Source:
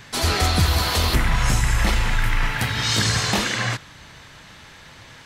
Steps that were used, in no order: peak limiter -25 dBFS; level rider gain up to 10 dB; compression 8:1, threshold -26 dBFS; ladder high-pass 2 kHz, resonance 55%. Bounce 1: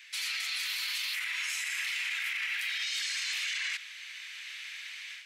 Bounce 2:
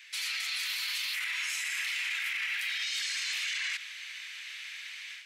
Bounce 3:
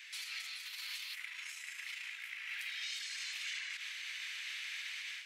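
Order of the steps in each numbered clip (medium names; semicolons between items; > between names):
level rider > ladder high-pass > peak limiter > compression; ladder high-pass > compression > level rider > peak limiter; compression > level rider > peak limiter > ladder high-pass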